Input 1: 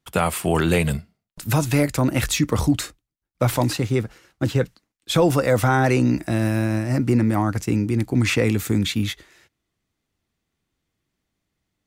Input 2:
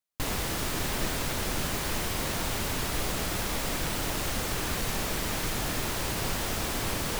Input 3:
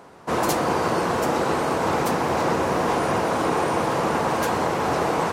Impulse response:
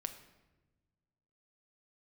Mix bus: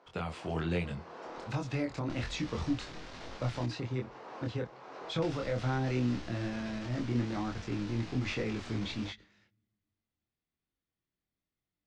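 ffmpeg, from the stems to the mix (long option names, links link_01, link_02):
-filter_complex "[0:a]acrossover=split=430|3000[link_01][link_02][link_03];[link_02]acompressor=threshold=-22dB:ratio=6[link_04];[link_01][link_04][link_03]amix=inputs=3:normalize=0,volume=-12dB,asplit=3[link_05][link_06][link_07];[link_06]volume=-17.5dB[link_08];[1:a]flanger=delay=15:depth=4.1:speed=0.42,adelay=1900,volume=2.5dB,asplit=3[link_09][link_10][link_11];[link_09]atrim=end=3.66,asetpts=PTS-STARTPTS,afade=type=out:start_time=3.656:duration=0.004:curve=hsin[link_12];[link_10]atrim=start=3.66:end=5.22,asetpts=PTS-STARTPTS,volume=0[link_13];[link_11]atrim=start=5.22,asetpts=PTS-STARTPTS,afade=type=in:duration=0.004:curve=hsin[link_14];[link_12][link_13][link_14]concat=n=3:v=0:a=1[link_15];[2:a]highpass=300,volume=-13dB,asplit=2[link_16][link_17];[link_17]volume=-23.5dB[link_18];[link_07]apad=whole_len=234874[link_19];[link_16][link_19]sidechaincompress=threshold=-48dB:ratio=6:attack=16:release=390[link_20];[link_15][link_20]amix=inputs=2:normalize=0,aeval=exprs='clip(val(0),-1,0.0178)':channel_layout=same,acompressor=threshold=-39dB:ratio=6,volume=0dB[link_21];[3:a]atrim=start_sample=2205[link_22];[link_08][link_18]amix=inputs=2:normalize=0[link_23];[link_23][link_22]afir=irnorm=-1:irlink=0[link_24];[link_05][link_21][link_24]amix=inputs=3:normalize=0,flanger=delay=22.5:depth=3.4:speed=1.2,lowpass=frequency=5500:width=0.5412,lowpass=frequency=5500:width=1.3066"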